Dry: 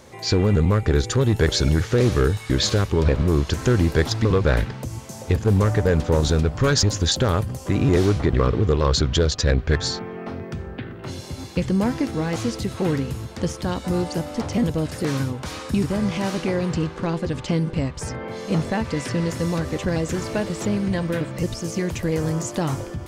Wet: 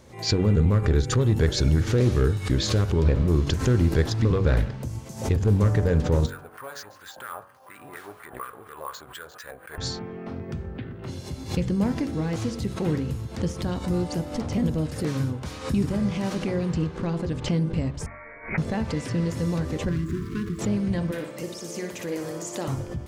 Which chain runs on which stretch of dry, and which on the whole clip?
6.26–9.78 tilt shelf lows -7 dB, about 840 Hz + wah 4.2 Hz 710–1600 Hz, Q 3.2 + careless resampling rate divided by 4×, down none, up hold
18.06–18.58 HPF 560 Hz + tilt +3.5 dB/oct + inverted band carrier 2700 Hz
19.89–20.59 median filter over 15 samples + brick-wall FIR band-stop 430–1000 Hz
21.11–22.68 HPF 330 Hz + high shelf 9400 Hz +5.5 dB + flutter echo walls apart 10.2 m, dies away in 0.49 s
whole clip: low shelf 360 Hz +7 dB; de-hum 46.92 Hz, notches 38; backwards sustainer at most 130 dB/s; gain -7 dB

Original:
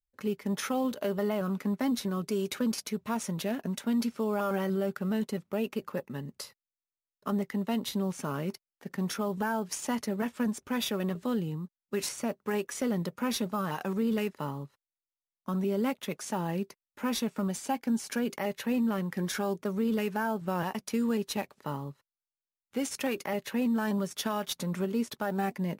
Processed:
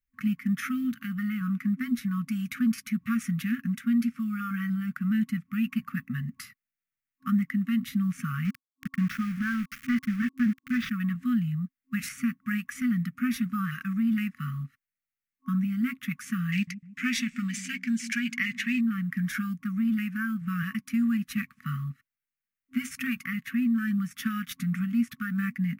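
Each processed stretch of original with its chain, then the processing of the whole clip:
8.45–10.91 CVSD 32 kbps + sample gate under -39.5 dBFS + upward compressor, threshold -40 dBFS
16.52–18.81 band shelf 3900 Hz +14 dB 2.5 oct + dark delay 0.153 s, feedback 55%, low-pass 600 Hz, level -13 dB
whole clip: vocal rider within 4 dB 0.5 s; graphic EQ 125/250/500/1000/2000/4000/8000 Hz +3/+5/-4/-3/+9/-10/-6 dB; FFT band-reject 260–1100 Hz

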